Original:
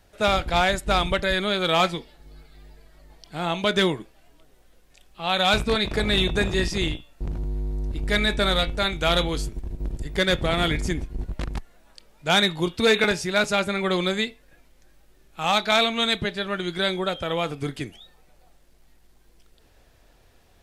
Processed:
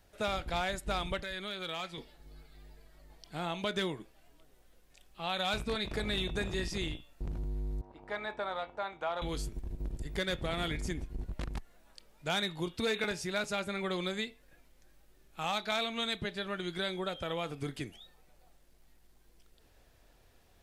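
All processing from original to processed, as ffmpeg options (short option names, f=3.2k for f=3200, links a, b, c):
-filter_complex "[0:a]asettb=1/sr,asplit=3[a][b][c];[a]atrim=end=1.214[d];[b]atrim=start=1.21:end=1.98,asetpts=PTS-STARTPTS,afade=t=in:d=0.004:c=qsin,afade=t=out:st=0.766:d=0.004:c=qsin,acrossover=split=1400|5300[e][f][g];[e]acompressor=threshold=-35dB:ratio=4[h];[f]acompressor=threshold=-32dB:ratio=4[i];[g]acompressor=threshold=-52dB:ratio=4[j];[h][i][j]amix=inputs=3:normalize=0,asoftclip=type=hard:threshold=-20dB[k];[c]atrim=start=1.976[l];[d][k]acrossfade=d=0.004:c1=hsin:c2=qsin[m];[m][l]acrossfade=d=0.004:c1=qsin:c2=hsin,asettb=1/sr,asplit=3[n][o][p];[n]atrim=end=7.814[q];[o]atrim=start=7.81:end=9.22,asetpts=PTS-STARTPTS,afade=t=in:d=0.004:c=qsin,afade=t=out:st=1.406:d=0.004:c=qsin,bandpass=f=880:t=q:w=2.6,acontrast=31[r];[p]atrim=start=9.216[s];[q][r]acrossfade=d=0.004:c1=hsin:c2=qsin[t];[t][s]acrossfade=d=0.004:c1=qsin:c2=hsin,highshelf=f=12k:g=4.5,acompressor=threshold=-28dB:ratio=2,volume=-6.5dB"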